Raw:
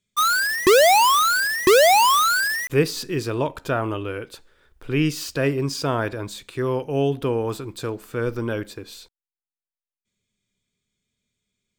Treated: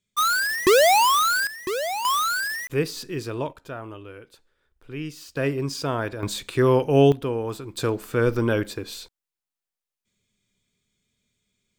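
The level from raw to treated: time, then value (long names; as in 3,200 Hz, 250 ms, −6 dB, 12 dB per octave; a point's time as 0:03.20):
−2 dB
from 0:01.47 −13 dB
from 0:02.05 −5 dB
from 0:03.53 −12 dB
from 0:05.37 −3 dB
from 0:06.23 +5.5 dB
from 0:07.12 −3.5 dB
from 0:07.77 +4 dB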